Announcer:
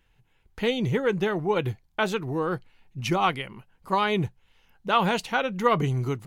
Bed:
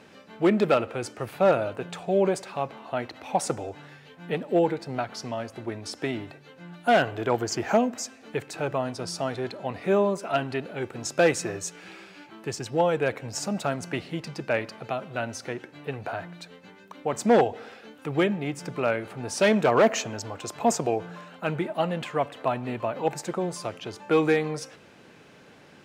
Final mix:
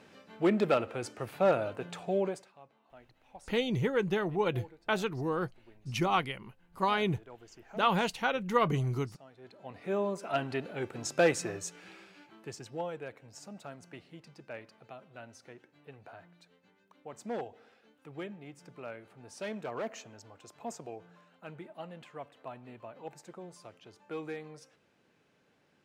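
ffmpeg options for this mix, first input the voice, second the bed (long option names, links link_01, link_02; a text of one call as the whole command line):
ffmpeg -i stem1.wav -i stem2.wav -filter_complex "[0:a]adelay=2900,volume=-5dB[link_01];[1:a]volume=16dB,afade=type=out:start_time=2.08:duration=0.44:silence=0.0944061,afade=type=in:start_time=9.36:duration=1.18:silence=0.0841395,afade=type=out:start_time=11.24:duration=1.86:silence=0.211349[link_02];[link_01][link_02]amix=inputs=2:normalize=0" out.wav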